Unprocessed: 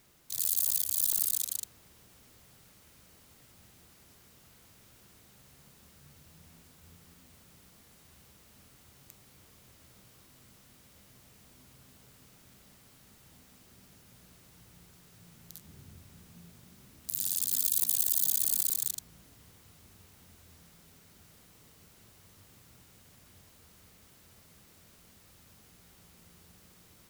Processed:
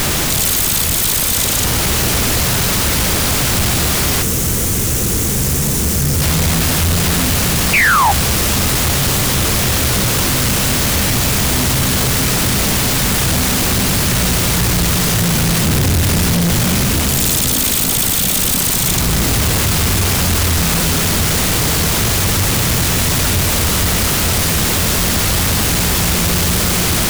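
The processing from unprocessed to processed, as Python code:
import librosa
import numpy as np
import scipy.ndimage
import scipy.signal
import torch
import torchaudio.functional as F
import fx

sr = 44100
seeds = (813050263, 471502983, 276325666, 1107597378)

p1 = x + 0.5 * 10.0 ** (-25.5 / 20.0) * np.sign(x)
p2 = fx.rider(p1, sr, range_db=10, speed_s=0.5)
p3 = p1 + (p2 * librosa.db_to_amplitude(-2.0))
p4 = fx.spec_paint(p3, sr, seeds[0], shape='fall', start_s=7.73, length_s=0.39, low_hz=760.0, high_hz=2600.0, level_db=-20.0)
p5 = fx.low_shelf(p4, sr, hz=69.0, db=7.5)
p6 = fx.spec_box(p5, sr, start_s=4.22, length_s=1.99, low_hz=520.0, high_hz=5600.0, gain_db=-8)
p7 = fx.leveller(p6, sr, passes=3)
y = fx.doppler_dist(p7, sr, depth_ms=0.4)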